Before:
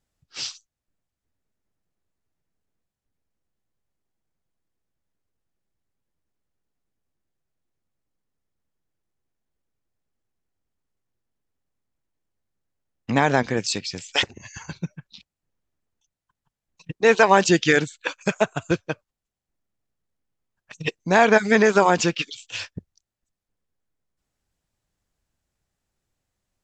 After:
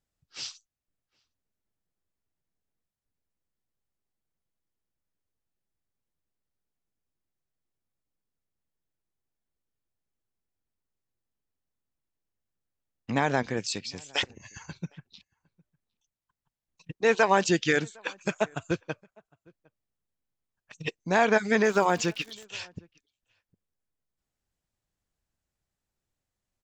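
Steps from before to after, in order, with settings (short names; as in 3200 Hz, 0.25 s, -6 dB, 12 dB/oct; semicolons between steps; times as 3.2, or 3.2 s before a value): outdoor echo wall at 130 m, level -28 dB; 21.63–22.43 crackle 200/s -31 dBFS; gain -6.5 dB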